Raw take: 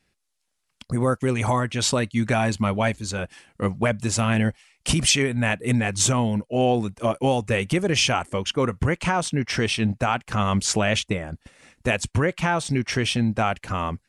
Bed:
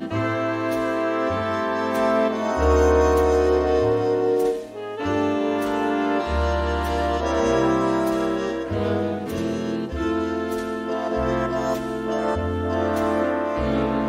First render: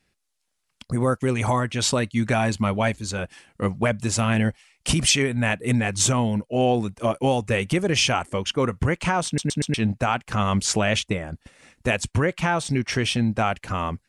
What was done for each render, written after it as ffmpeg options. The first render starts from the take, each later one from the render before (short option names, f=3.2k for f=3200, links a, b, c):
-filter_complex "[0:a]asplit=5[a][b][c][d][e];[a]atrim=end=9.382[f];[b]atrim=start=9.258:end=9.382[g];[c]atrim=start=9.258:end=9.382[h];[d]atrim=start=9.258:end=9.382[i];[e]atrim=start=9.738[j];[f][g]acrossfade=d=0.004:c1=hsin:c2=hsin[k];[k][h]acrossfade=d=0.004:c1=hsin:c2=hsin[l];[l][i]acrossfade=d=0.004:c1=hsin:c2=hsin[m];[m][j]acrossfade=d=0.004:c1=hsin:c2=hsin"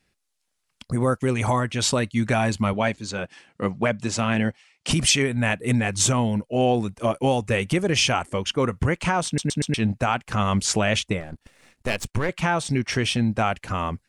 -filter_complex "[0:a]asettb=1/sr,asplit=3[a][b][c];[a]atrim=end=2.734[d];[b]atrim=start=2.73:end=4.91,asetpts=PTS-STARTPTS,afade=t=in:d=0.004:c=qsin,afade=t=out:st=2.176:d=0.004:c=qsin,highpass=130,lowpass=6.6k[e];[c]atrim=start=4.906[f];[d][e]acrossfade=d=0.004:c1=hsin:c2=qsin[g];[g][f]acrossfade=d=0.004:c1=qsin:c2=hsin,asettb=1/sr,asplit=3[h][i][j];[h]atrim=end=11.204[k];[i]atrim=start=11.2:end=12.29,asetpts=PTS-STARTPTS,afade=t=in:d=0.004:c=qsin,afade=t=out:st=1.086:d=0.004:c=qsin,aeval=exprs='if(lt(val(0),0),0.251*val(0),val(0))':c=same[l];[j]atrim=start=12.286[m];[k][l]acrossfade=d=0.004:c1=hsin:c2=qsin[n];[n][m]acrossfade=d=0.004:c1=qsin:c2=hsin"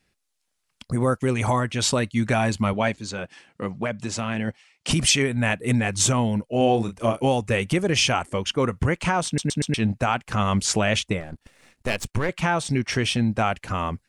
-filter_complex "[0:a]asplit=3[a][b][c];[a]afade=t=out:st=2.96:d=0.02[d];[b]acompressor=threshold=-29dB:ratio=1.5:attack=3.2:release=140:knee=1:detection=peak,afade=t=in:st=2.96:d=0.02,afade=t=out:st=4.47:d=0.02[e];[c]afade=t=in:st=4.47:d=0.02[f];[d][e][f]amix=inputs=3:normalize=0,asettb=1/sr,asplit=3[g][h][i];[g]atrim=end=6.574[j];[h]atrim=start=6.57:end=7.23,asetpts=PTS-STARTPTS,afade=t=in:d=0.004:c=qsin,afade=t=out:st=0.656:d=0.004:c=qsin,asplit=2[k][l];[l]adelay=35,volume=-8dB[m];[k][m]amix=inputs=2:normalize=0,atrim=end_sample=29106[n];[i]atrim=start=7.226[o];[j][n]acrossfade=d=0.004:c1=hsin:c2=qsin[p];[p][o]acrossfade=d=0.004:c1=qsin:c2=hsin"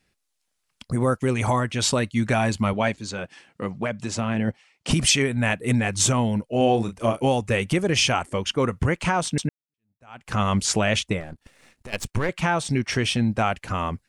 -filter_complex "[0:a]asettb=1/sr,asplit=3[a][b][c];[a]atrim=end=4.154[d];[b]atrim=start=4.15:end=4.94,asetpts=PTS-STARTPTS,afade=t=in:d=0.004:c=qsin,afade=t=out:st=0.786:d=0.004:c=qsin,tiltshelf=f=1.2k:g=3.5[e];[c]atrim=start=4.936[f];[d][e]acrossfade=d=0.004:c1=hsin:c2=qsin[g];[g][f]acrossfade=d=0.004:c1=qsin:c2=hsin,asplit=3[h][i][j];[h]afade=t=out:st=11.32:d=0.02[k];[i]acompressor=threshold=-39dB:ratio=3:attack=3.2:release=140:knee=1:detection=peak,afade=t=in:st=11.32:d=0.02,afade=t=out:st=11.92:d=0.02[l];[j]afade=t=in:st=11.92:d=0.02[m];[k][l][m]amix=inputs=3:normalize=0,asplit=2[n][o];[n]atrim=end=9.49,asetpts=PTS-STARTPTS,afade=t=out:st=9.486:d=0.004:c=hsin[p];[o]atrim=start=9.49,asetpts=PTS-STARTPTS,afade=t=in:d=0.79:c=exp[q];[p][q]concat=n=2:v=0:a=1"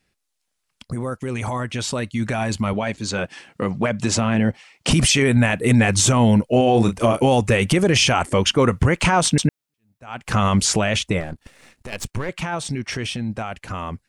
-af "alimiter=limit=-18.5dB:level=0:latency=1:release=53,dynaudnorm=f=300:g=21:m=11dB"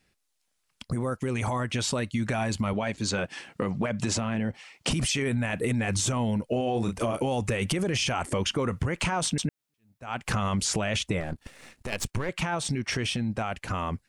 -af "alimiter=limit=-12.5dB:level=0:latency=1:release=28,acompressor=threshold=-25dB:ratio=4"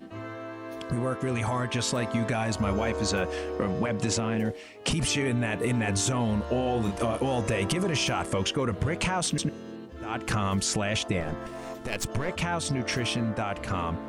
-filter_complex "[1:a]volume=-15dB[a];[0:a][a]amix=inputs=2:normalize=0"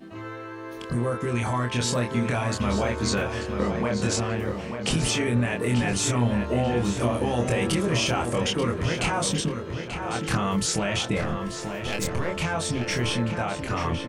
-filter_complex "[0:a]asplit=2[a][b];[b]adelay=25,volume=-3dB[c];[a][c]amix=inputs=2:normalize=0,asplit=2[d][e];[e]adelay=886,lowpass=f=4.2k:p=1,volume=-7dB,asplit=2[f][g];[g]adelay=886,lowpass=f=4.2k:p=1,volume=0.46,asplit=2[h][i];[i]adelay=886,lowpass=f=4.2k:p=1,volume=0.46,asplit=2[j][k];[k]adelay=886,lowpass=f=4.2k:p=1,volume=0.46,asplit=2[l][m];[m]adelay=886,lowpass=f=4.2k:p=1,volume=0.46[n];[d][f][h][j][l][n]amix=inputs=6:normalize=0"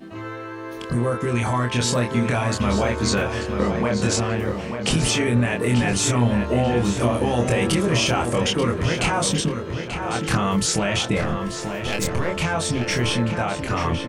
-af "volume=4dB"